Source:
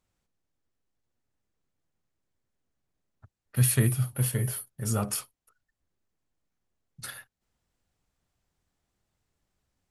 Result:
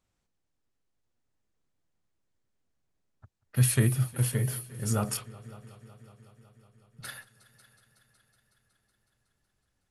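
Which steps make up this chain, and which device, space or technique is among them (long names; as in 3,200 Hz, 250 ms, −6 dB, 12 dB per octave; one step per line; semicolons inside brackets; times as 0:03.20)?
low-pass filter 11,000 Hz 12 dB per octave
multi-head tape echo (echo machine with several playback heads 185 ms, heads all three, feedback 61%, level −23 dB; tape wow and flutter 25 cents)
0:05.17–0:07.05: flat-topped bell 7,900 Hz −13 dB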